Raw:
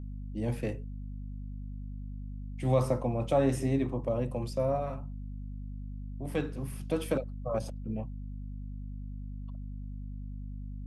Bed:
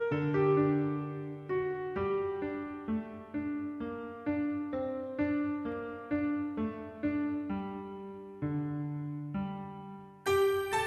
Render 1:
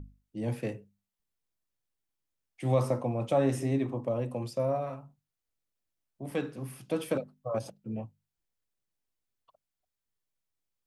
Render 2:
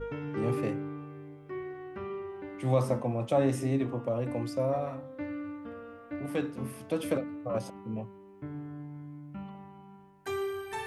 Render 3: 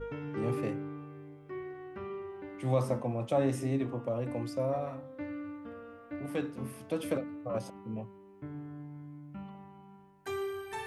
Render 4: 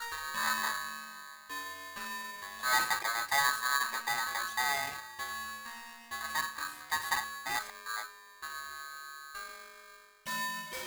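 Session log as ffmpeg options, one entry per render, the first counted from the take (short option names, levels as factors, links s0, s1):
-af "bandreject=f=50:t=h:w=6,bandreject=f=100:t=h:w=6,bandreject=f=150:t=h:w=6,bandreject=f=200:t=h:w=6,bandreject=f=250:t=h:w=6"
-filter_complex "[1:a]volume=0.501[s0];[0:a][s0]amix=inputs=2:normalize=0"
-af "volume=0.75"
-filter_complex "[0:a]acrossover=split=170|860[s0][s1][s2];[s2]aeval=exprs='(mod(79.4*val(0)+1,2)-1)/79.4':c=same[s3];[s0][s1][s3]amix=inputs=3:normalize=0,aeval=exprs='val(0)*sgn(sin(2*PI*1400*n/s))':c=same"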